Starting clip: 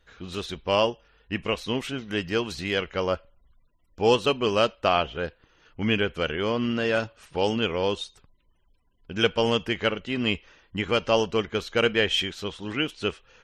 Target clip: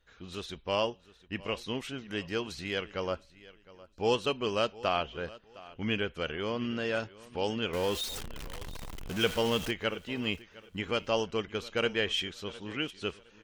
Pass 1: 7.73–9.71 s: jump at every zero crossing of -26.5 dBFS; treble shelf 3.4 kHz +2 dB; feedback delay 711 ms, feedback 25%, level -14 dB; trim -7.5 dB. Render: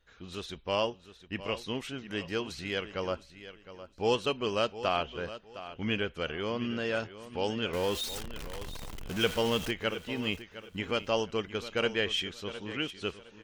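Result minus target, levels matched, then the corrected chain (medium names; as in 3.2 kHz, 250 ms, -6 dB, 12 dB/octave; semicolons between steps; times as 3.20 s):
echo-to-direct +6 dB
7.73–9.71 s: jump at every zero crossing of -26.5 dBFS; treble shelf 3.4 kHz +2 dB; feedback delay 711 ms, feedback 25%, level -20 dB; trim -7.5 dB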